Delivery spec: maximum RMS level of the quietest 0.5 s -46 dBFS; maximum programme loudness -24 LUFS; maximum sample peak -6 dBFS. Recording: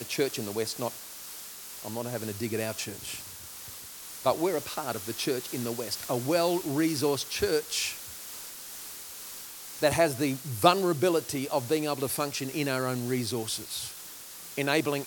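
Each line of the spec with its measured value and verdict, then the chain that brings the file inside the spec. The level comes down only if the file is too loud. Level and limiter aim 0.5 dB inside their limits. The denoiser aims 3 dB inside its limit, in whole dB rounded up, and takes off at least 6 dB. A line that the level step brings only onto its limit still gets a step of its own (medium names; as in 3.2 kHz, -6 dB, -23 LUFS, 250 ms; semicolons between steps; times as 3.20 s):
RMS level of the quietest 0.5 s -44 dBFS: fail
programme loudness -30.0 LUFS: pass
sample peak -5.0 dBFS: fail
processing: noise reduction 6 dB, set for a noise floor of -44 dBFS; peak limiter -6.5 dBFS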